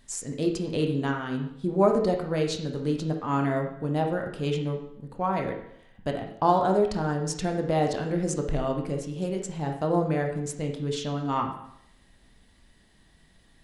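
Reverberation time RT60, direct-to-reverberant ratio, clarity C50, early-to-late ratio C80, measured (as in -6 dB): 0.70 s, 2.5 dB, 6.0 dB, 9.5 dB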